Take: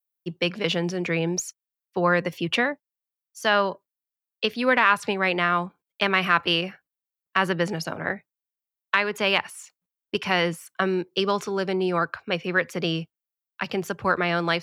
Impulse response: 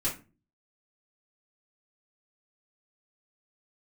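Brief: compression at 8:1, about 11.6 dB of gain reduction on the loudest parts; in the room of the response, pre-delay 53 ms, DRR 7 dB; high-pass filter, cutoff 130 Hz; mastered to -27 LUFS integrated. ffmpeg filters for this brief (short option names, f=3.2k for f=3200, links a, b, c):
-filter_complex "[0:a]highpass=130,acompressor=threshold=-27dB:ratio=8,asplit=2[a][b];[1:a]atrim=start_sample=2205,adelay=53[c];[b][c]afir=irnorm=-1:irlink=0,volume=-13dB[d];[a][d]amix=inputs=2:normalize=0,volume=4.5dB"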